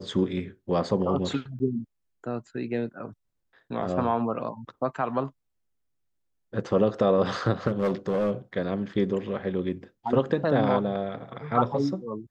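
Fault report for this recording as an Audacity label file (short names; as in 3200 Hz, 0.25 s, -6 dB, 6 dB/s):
1.590000	1.600000	gap 10 ms
7.670000	8.310000	clipped -20.5 dBFS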